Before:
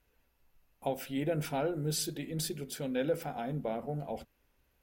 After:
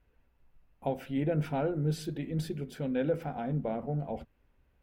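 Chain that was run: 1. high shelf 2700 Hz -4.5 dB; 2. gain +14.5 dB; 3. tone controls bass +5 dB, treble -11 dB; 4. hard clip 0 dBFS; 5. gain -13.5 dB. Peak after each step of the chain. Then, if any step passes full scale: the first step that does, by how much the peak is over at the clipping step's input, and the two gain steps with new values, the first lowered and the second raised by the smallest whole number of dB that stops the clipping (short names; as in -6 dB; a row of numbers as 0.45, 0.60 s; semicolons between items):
-20.5, -6.0, -5.5, -5.5, -19.0 dBFS; no overload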